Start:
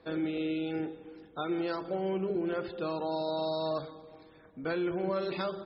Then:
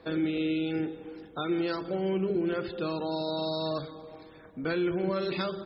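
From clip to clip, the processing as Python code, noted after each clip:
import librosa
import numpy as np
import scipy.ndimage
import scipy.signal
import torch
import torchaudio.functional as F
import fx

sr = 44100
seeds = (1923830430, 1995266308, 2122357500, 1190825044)

y = fx.dynamic_eq(x, sr, hz=770.0, q=0.88, threshold_db=-45.0, ratio=4.0, max_db=-7)
y = y * 10.0 ** (5.5 / 20.0)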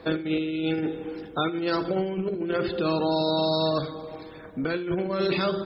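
y = fx.over_compress(x, sr, threshold_db=-31.0, ratio=-0.5)
y = y + 10.0 ** (-17.5 / 20.0) * np.pad(y, (int(77 * sr / 1000.0), 0))[:len(y)]
y = y * 10.0 ** (6.0 / 20.0)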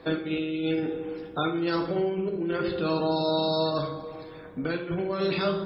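y = fx.rev_plate(x, sr, seeds[0], rt60_s=0.66, hf_ratio=0.65, predelay_ms=0, drr_db=4.0)
y = y * 10.0 ** (-3.0 / 20.0)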